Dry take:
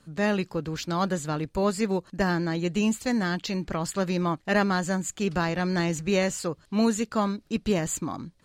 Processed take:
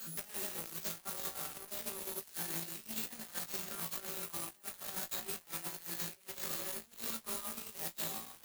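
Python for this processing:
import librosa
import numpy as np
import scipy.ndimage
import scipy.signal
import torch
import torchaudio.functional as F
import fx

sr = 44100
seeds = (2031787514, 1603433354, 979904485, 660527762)

y = fx.reverse_delay(x, sr, ms=293, wet_db=-9.0)
y = np.repeat(y[::4], 4)[:len(y)]
y = fx.riaa(y, sr, side='recording')
y = fx.hum_notches(y, sr, base_hz=50, count=8)
y = fx.rev_fdn(y, sr, rt60_s=1.2, lf_ratio=1.0, hf_ratio=0.7, size_ms=77.0, drr_db=3.5)
y = fx.over_compress(y, sr, threshold_db=-28.0, ratio=-0.5)
y = fx.high_shelf(y, sr, hz=8700.0, db=6.5)
y = 10.0 ** (-24.0 / 20.0) * np.tanh(y / 10.0 ** (-24.0 / 20.0))
y = y + 0.37 * np.pad(y, (int(5.2 * sr / 1000.0), 0))[:len(y)]
y = fx.room_flutter(y, sr, wall_m=3.1, rt60_s=0.31)
y = fx.cheby_harmonics(y, sr, harmonics=(3,), levels_db=(-9,), full_scale_db=-15.0)
y = fx.band_squash(y, sr, depth_pct=100)
y = y * librosa.db_to_amplitude(-5.5)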